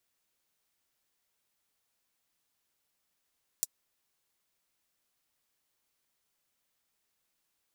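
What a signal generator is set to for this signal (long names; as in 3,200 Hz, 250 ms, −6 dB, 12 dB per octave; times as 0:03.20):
closed synth hi-hat, high-pass 6,400 Hz, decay 0.04 s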